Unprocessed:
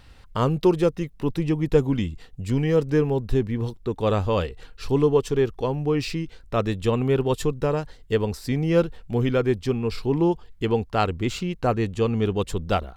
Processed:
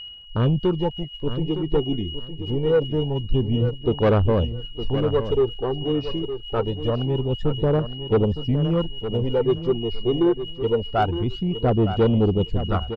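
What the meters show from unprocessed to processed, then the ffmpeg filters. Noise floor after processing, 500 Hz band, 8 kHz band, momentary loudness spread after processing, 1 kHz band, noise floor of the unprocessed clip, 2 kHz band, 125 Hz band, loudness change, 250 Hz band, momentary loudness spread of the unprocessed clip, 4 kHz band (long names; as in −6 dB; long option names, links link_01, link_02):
−37 dBFS, +1.0 dB, below −20 dB, 8 LU, 0.0 dB, −49 dBFS, −3.5 dB, +2.5 dB, +1.0 dB, +0.5 dB, 7 LU, +6.5 dB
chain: -filter_complex "[0:a]afwtdn=0.0631,lowpass=frequency=5000:width=0.5412,lowpass=frequency=5000:width=1.3066,aeval=exprs='val(0)+0.01*sin(2*PI*2900*n/s)':channel_layout=same,aphaser=in_gain=1:out_gain=1:delay=2.8:decay=0.59:speed=0.25:type=sinusoidal,asoftclip=type=tanh:threshold=-12dB,asplit=2[link_01][link_02];[link_02]aecho=0:1:912|1824|2736:0.299|0.0627|0.0132[link_03];[link_01][link_03]amix=inputs=2:normalize=0"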